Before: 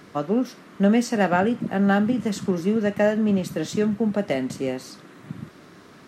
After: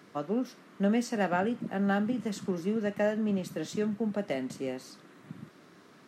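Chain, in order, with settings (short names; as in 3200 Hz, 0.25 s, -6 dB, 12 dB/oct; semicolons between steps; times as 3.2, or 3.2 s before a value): HPF 130 Hz; gain -8 dB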